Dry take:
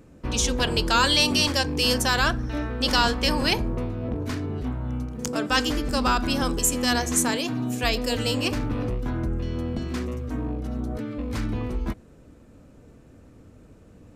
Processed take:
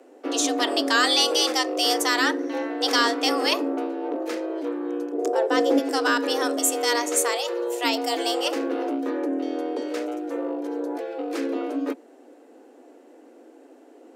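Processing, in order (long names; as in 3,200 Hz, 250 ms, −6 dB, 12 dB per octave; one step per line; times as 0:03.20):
0:05.12–0:05.78: tilt shelving filter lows +9 dB, about 710 Hz
frequency shifter +230 Hz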